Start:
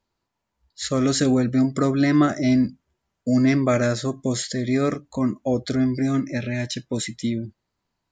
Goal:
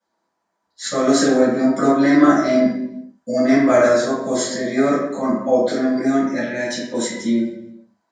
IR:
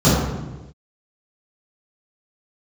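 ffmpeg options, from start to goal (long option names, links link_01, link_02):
-filter_complex "[0:a]highpass=720,asplit=2[link_01][link_02];[link_02]asoftclip=type=hard:threshold=-22dB,volume=-7.5dB[link_03];[link_01][link_03]amix=inputs=2:normalize=0[link_04];[1:a]atrim=start_sample=2205,asetrate=57330,aresample=44100[link_05];[link_04][link_05]afir=irnorm=-1:irlink=0,volume=-16.5dB"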